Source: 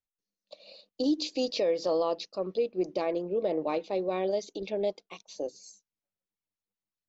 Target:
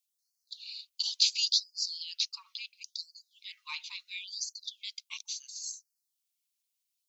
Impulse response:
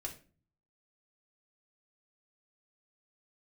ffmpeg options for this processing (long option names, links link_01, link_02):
-af "bandreject=frequency=1800:width=10,aexciter=amount=8:drive=3.2:freq=2200,afftfilt=real='re*gte(b*sr/1024,820*pow(4300/820,0.5+0.5*sin(2*PI*0.72*pts/sr)))':imag='im*gte(b*sr/1024,820*pow(4300/820,0.5+0.5*sin(2*PI*0.72*pts/sr)))':win_size=1024:overlap=0.75,volume=-7.5dB"